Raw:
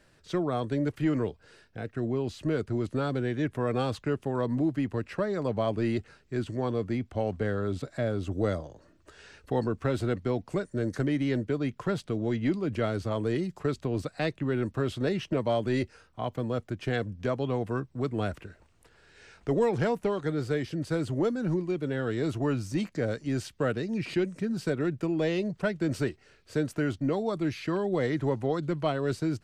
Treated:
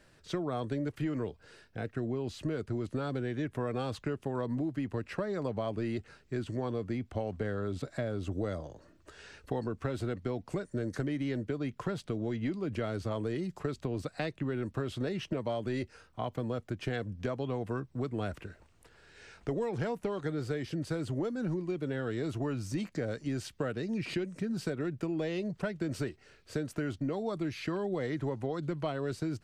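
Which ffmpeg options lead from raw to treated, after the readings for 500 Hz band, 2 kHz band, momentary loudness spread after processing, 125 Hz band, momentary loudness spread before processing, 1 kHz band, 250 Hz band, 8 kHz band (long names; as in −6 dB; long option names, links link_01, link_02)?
−6.0 dB, −5.0 dB, 4 LU, −4.5 dB, 5 LU, −5.5 dB, −5.0 dB, −3.0 dB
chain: -af "acompressor=threshold=-30dB:ratio=6"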